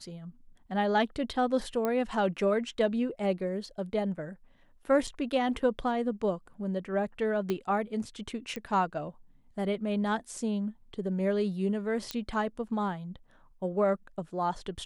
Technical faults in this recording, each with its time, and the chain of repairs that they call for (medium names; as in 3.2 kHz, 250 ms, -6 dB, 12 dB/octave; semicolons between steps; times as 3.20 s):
1.85 s: pop -17 dBFS
5.07–5.08 s: dropout 6.2 ms
7.50 s: pop -18 dBFS
8.56 s: pop -23 dBFS
12.11 s: pop -17 dBFS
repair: de-click; interpolate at 5.07 s, 6.2 ms